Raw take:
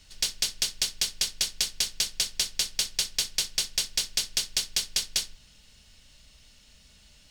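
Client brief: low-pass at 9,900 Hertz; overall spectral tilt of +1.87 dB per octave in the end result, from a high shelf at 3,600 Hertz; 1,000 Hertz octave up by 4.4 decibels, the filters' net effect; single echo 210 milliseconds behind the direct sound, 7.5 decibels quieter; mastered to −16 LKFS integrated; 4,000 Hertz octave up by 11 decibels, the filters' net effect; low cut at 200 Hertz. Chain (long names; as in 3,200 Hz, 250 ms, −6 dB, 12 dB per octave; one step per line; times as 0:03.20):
high-pass filter 200 Hz
low-pass filter 9,900 Hz
parametric band 1,000 Hz +4.5 dB
high-shelf EQ 3,600 Hz +7 dB
parametric band 4,000 Hz +8.5 dB
single-tap delay 210 ms −7.5 dB
level +1 dB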